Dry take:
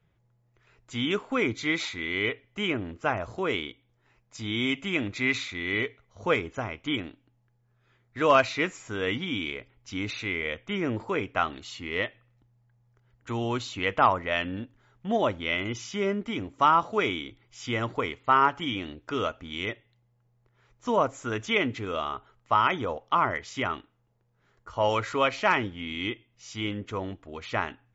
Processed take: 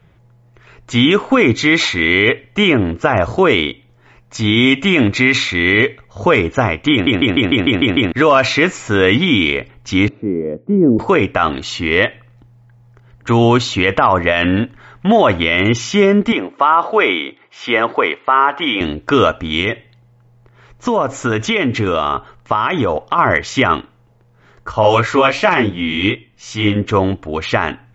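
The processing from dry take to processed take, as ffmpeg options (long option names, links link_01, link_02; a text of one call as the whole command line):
ffmpeg -i in.wav -filter_complex "[0:a]asettb=1/sr,asplit=3[link_01][link_02][link_03];[link_01]atrim=end=10.084[link_04];[link_02]atrim=start=10.08:end=10.99,asetpts=PTS-STARTPTS,afade=type=in:duration=0.004:curve=qsin,afade=type=out:start_time=0.906:duration=0.004:curve=qsin,asuperpass=centerf=250:order=4:qfactor=0.88[link_05];[link_03]atrim=start=10.986[link_06];[link_04][link_05]acrossfade=duration=0.004:curve1=hsin:curve2=qsin[link_07];[link_07][link_06]acrossfade=duration=0.004:curve1=qsin:curve2=hsin,asplit=3[link_08][link_09][link_10];[link_08]afade=type=out:start_time=14.42:duration=0.02[link_11];[link_09]equalizer=frequency=1800:width=0.55:gain=6.5,afade=type=in:start_time=14.42:duration=0.02,afade=type=out:start_time=15.42:duration=0.02[link_12];[link_10]afade=type=in:start_time=15.42:duration=0.02[link_13];[link_11][link_12][link_13]amix=inputs=3:normalize=0,asettb=1/sr,asplit=3[link_14][link_15][link_16];[link_14]atrim=end=16.324[link_17];[link_15]atrim=start=16.32:end=18.81,asetpts=PTS-STARTPTS,afade=type=in:duration=0.004:curve=qsin,afade=type=out:start_time=2.486:duration=0.004:curve=qsin,highpass=410,lowpass=3100[link_18];[link_16]atrim=start=18.806[link_19];[link_17][link_18]acrossfade=duration=0.004:curve1=hsin:curve2=qsin[link_20];[link_20][link_19]acrossfade=duration=0.004:curve1=qsin:curve2=hsin,asplit=3[link_21][link_22][link_23];[link_21]afade=type=out:start_time=19.6:duration=0.02[link_24];[link_22]acompressor=threshold=-30dB:ratio=6:attack=3.2:release=140:knee=1:detection=peak,afade=type=in:start_time=19.6:duration=0.02,afade=type=out:start_time=23.18:duration=0.02[link_25];[link_23]afade=type=in:start_time=23.18:duration=0.02[link_26];[link_24][link_25][link_26]amix=inputs=3:normalize=0,asettb=1/sr,asplit=3[link_27][link_28][link_29];[link_27]atrim=end=24.724[link_30];[link_28]atrim=start=24.72:end=26.76,asetpts=PTS-STARTPTS,afade=type=in:duration=0.004:curve=qsin,afade=type=out:start_time=2.036:duration=0.004:curve=qsin,flanger=delay=15.5:depth=5.8:speed=2.7[link_31];[link_29]atrim=start=26.756[link_32];[link_30][link_31]acrossfade=duration=0.004:curve1=hsin:curve2=qsin[link_33];[link_33][link_32]acrossfade=duration=0.004:curve1=qsin:curve2=hsin,asplit=9[link_34][link_35][link_36][link_37][link_38][link_39][link_40][link_41][link_42];[link_34]atrim=end=7.072[link_43];[link_35]atrim=start=6.918:end=7.072[link_44];[link_36]atrim=start=6.918:end=7.072[link_45];[link_37]atrim=start=6.918:end=7.072[link_46];[link_38]atrim=start=6.918:end=7.072[link_47];[link_39]atrim=start=6.918:end=7.072[link_48];[link_40]atrim=start=6.918:end=7.072[link_49];[link_41]atrim=start=6.918:end=7.072[link_50];[link_42]atrim=start=8.118[link_51];[link_43][link_44]acrossfade=duration=0.004:curve1=hsin:curve2=hsin[link_52];[link_52][link_45]acrossfade=duration=0.004:curve1=hsin:curve2=hsin[link_53];[link_53][link_46]acrossfade=duration=0.004:curve1=hsin:curve2=hsin[link_54];[link_54][link_47]acrossfade=duration=0.004:curve1=hsin:curve2=hsin[link_55];[link_55][link_48]acrossfade=duration=0.004:curve1=hsin:curve2=hsin[link_56];[link_56][link_49]acrossfade=duration=0.004:curve1=hsin:curve2=hsin[link_57];[link_57][link_50]acrossfade=duration=0.004:curve1=hsin:curve2=hsin[link_58];[link_58][link_51]acrossfade=duration=0.004:curve1=hsin:curve2=hsin,highshelf=frequency=4500:gain=-6,alimiter=level_in=20dB:limit=-1dB:release=50:level=0:latency=1,volume=-1dB" out.wav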